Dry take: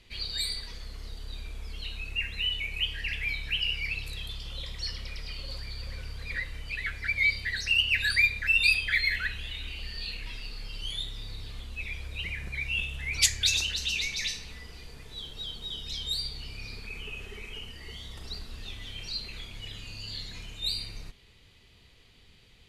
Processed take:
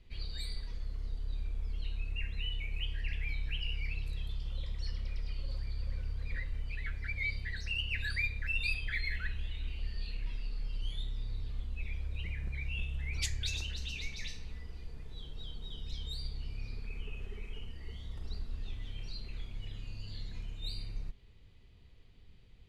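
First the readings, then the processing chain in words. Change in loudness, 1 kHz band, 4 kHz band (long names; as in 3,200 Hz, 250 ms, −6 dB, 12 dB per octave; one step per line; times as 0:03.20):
−10.0 dB, −9.0 dB, −13.0 dB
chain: spectral tilt −2.5 dB per octave
level −8.5 dB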